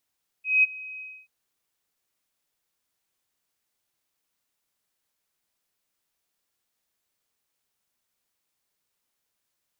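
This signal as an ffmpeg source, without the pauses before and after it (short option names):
-f lavfi -i "aevalsrc='0.2*sin(2*PI*2530*t)':d=0.833:s=44100,afade=t=in:d=0.194,afade=t=out:st=0.194:d=0.021:silence=0.0841,afade=t=out:st=0.56:d=0.273"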